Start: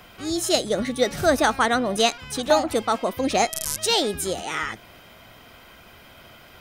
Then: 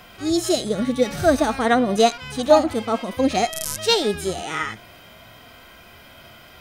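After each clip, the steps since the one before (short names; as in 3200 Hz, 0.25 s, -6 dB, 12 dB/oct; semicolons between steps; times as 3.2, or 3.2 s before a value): harmonic-percussive split percussive -16 dB; gain +6 dB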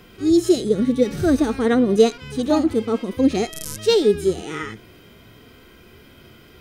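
resonant low shelf 520 Hz +6.5 dB, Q 3; gain -4.5 dB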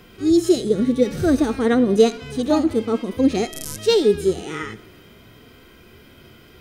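reverb RT60 1.7 s, pre-delay 4 ms, DRR 18.5 dB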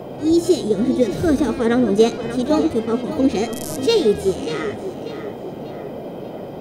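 band noise 120–680 Hz -32 dBFS; tape echo 0.589 s, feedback 49%, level -10 dB, low-pass 5100 Hz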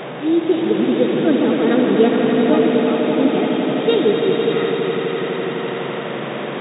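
delta modulation 64 kbps, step -22 dBFS; swelling echo 84 ms, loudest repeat 5, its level -8 dB; FFT band-pass 120–3800 Hz; gain -1 dB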